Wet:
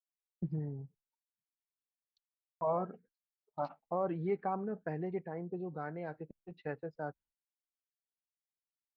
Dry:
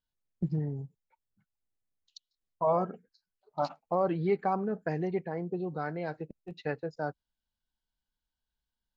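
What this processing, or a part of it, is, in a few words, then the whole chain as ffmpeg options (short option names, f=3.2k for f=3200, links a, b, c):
hearing-loss simulation: -af "lowpass=2.3k,agate=range=-33dB:threshold=-54dB:ratio=3:detection=peak,volume=-6dB"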